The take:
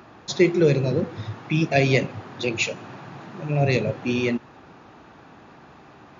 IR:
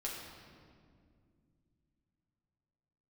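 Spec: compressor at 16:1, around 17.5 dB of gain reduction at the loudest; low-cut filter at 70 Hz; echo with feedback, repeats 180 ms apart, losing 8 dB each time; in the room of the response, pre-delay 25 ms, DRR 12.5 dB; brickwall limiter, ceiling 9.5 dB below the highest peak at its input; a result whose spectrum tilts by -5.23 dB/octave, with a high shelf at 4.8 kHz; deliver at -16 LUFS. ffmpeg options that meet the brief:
-filter_complex "[0:a]highpass=70,highshelf=f=4800:g=8,acompressor=threshold=0.0316:ratio=16,alimiter=level_in=1.58:limit=0.0631:level=0:latency=1,volume=0.631,aecho=1:1:180|360|540|720|900:0.398|0.159|0.0637|0.0255|0.0102,asplit=2[s0][s1];[1:a]atrim=start_sample=2205,adelay=25[s2];[s1][s2]afir=irnorm=-1:irlink=0,volume=0.211[s3];[s0][s3]amix=inputs=2:normalize=0,volume=12.6"

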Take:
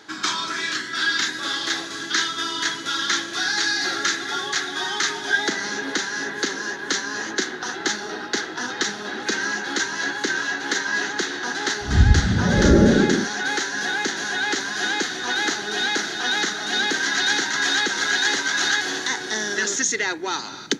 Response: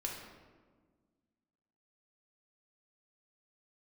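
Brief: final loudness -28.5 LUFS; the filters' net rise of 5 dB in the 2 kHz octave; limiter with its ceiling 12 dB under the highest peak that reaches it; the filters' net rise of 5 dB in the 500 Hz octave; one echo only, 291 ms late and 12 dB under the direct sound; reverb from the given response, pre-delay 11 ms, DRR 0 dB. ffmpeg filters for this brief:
-filter_complex "[0:a]equalizer=f=500:t=o:g=6.5,equalizer=f=2000:t=o:g=6,alimiter=limit=0.224:level=0:latency=1,aecho=1:1:291:0.251,asplit=2[s0][s1];[1:a]atrim=start_sample=2205,adelay=11[s2];[s1][s2]afir=irnorm=-1:irlink=0,volume=0.891[s3];[s0][s3]amix=inputs=2:normalize=0,volume=0.316"

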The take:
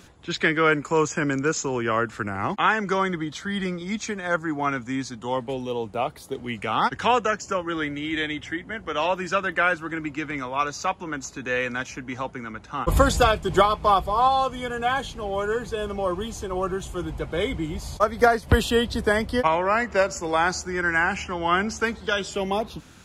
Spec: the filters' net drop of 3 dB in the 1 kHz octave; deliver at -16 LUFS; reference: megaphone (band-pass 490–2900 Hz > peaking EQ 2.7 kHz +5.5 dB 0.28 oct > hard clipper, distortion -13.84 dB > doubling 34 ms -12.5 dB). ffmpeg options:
-filter_complex "[0:a]highpass=490,lowpass=2900,equalizer=f=1000:t=o:g=-3.5,equalizer=f=2700:t=o:w=0.28:g=5.5,asoftclip=type=hard:threshold=0.119,asplit=2[s0][s1];[s1]adelay=34,volume=0.237[s2];[s0][s2]amix=inputs=2:normalize=0,volume=4.22"

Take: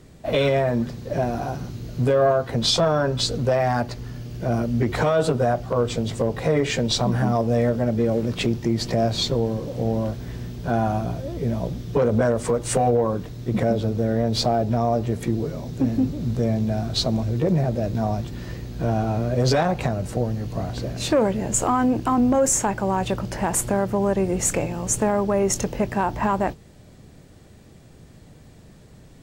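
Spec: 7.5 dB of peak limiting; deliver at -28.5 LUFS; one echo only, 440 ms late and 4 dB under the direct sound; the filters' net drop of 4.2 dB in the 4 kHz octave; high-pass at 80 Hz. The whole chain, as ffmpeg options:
-af "highpass=80,equalizer=f=4000:t=o:g=-5,alimiter=limit=0.168:level=0:latency=1,aecho=1:1:440:0.631,volume=0.631"

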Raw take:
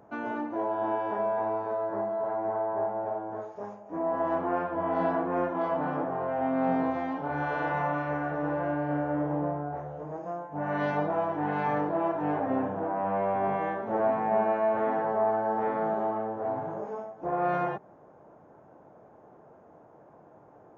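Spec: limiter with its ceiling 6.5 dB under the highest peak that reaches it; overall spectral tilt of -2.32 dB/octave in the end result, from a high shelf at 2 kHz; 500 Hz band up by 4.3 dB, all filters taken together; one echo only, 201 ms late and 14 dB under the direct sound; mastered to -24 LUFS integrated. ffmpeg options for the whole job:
-af "equalizer=f=500:t=o:g=5.5,highshelf=f=2000:g=4,alimiter=limit=0.119:level=0:latency=1,aecho=1:1:201:0.2,volume=1.58"

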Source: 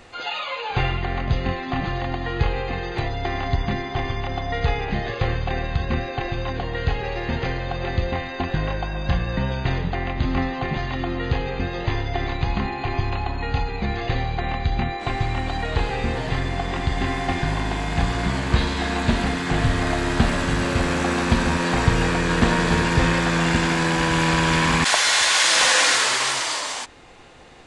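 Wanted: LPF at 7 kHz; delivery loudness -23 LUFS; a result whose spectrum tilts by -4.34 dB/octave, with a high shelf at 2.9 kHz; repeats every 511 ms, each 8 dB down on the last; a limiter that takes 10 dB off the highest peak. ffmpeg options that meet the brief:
-af "lowpass=7000,highshelf=f=2900:g=-6,alimiter=limit=0.211:level=0:latency=1,aecho=1:1:511|1022|1533|2044|2555:0.398|0.159|0.0637|0.0255|0.0102,volume=1.19"

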